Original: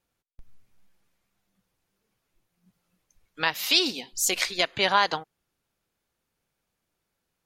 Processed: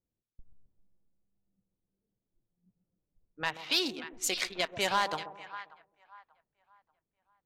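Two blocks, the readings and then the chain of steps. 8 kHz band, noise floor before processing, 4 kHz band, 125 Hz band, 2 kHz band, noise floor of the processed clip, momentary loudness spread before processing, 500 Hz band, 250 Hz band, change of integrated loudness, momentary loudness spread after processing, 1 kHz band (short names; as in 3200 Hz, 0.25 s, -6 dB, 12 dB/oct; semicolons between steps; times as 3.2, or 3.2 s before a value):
-8.0 dB, -81 dBFS, -7.5 dB, -5.0 dB, -7.0 dB, under -85 dBFS, 7 LU, -6.0 dB, -5.5 dB, -7.5 dB, 15 LU, -6.5 dB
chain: Wiener smoothing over 9 samples; split-band echo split 1000 Hz, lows 0.133 s, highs 0.586 s, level -12 dB; in parallel at -8 dB: wavefolder -17 dBFS; on the sum: low-pass opened by the level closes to 410 Hz, open at -20 dBFS; gain -8.5 dB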